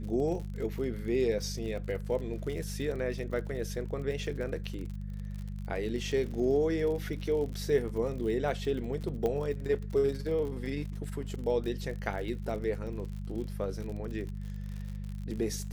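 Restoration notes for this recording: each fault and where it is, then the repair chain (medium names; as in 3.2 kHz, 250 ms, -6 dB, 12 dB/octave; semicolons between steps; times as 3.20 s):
crackle 52 per s -38 dBFS
hum 50 Hz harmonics 4 -38 dBFS
9.26 s: pop -20 dBFS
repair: de-click; de-hum 50 Hz, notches 4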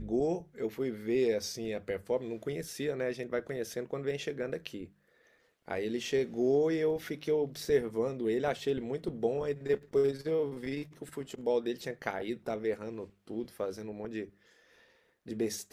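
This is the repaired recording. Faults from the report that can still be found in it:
9.26 s: pop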